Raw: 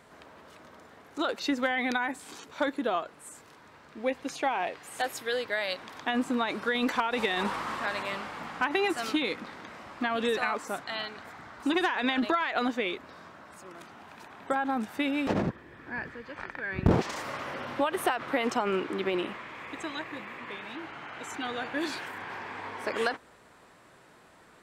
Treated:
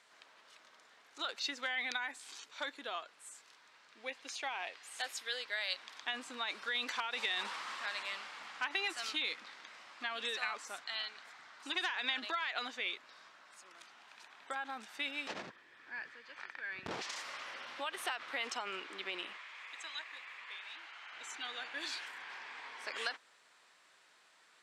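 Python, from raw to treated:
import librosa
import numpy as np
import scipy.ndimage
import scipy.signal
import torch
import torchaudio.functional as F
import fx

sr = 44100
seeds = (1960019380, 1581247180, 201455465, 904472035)

y = fx.bessel_highpass(x, sr, hz=650.0, order=2, at=(19.37, 21.13))
y = scipy.signal.sosfilt(scipy.signal.butter(2, 4800.0, 'lowpass', fs=sr, output='sos'), y)
y = np.diff(y, prepend=0.0)
y = F.gain(torch.from_numpy(y), 5.5).numpy()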